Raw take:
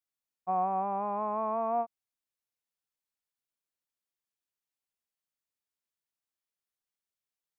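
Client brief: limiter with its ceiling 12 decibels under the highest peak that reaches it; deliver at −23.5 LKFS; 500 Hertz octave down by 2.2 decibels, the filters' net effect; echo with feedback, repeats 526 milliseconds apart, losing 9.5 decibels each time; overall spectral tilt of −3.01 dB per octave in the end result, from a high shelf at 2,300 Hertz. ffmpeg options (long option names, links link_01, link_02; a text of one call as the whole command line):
ffmpeg -i in.wav -af "equalizer=frequency=500:width_type=o:gain=-4,highshelf=frequency=2300:gain=5,alimiter=level_in=10dB:limit=-24dB:level=0:latency=1,volume=-10dB,aecho=1:1:526|1052|1578|2104:0.335|0.111|0.0365|0.012,volume=19.5dB" out.wav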